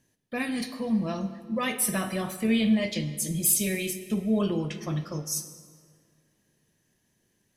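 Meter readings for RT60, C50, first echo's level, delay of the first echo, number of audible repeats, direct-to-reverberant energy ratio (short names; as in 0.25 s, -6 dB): 2.1 s, 11.5 dB, none, none, none, 11.0 dB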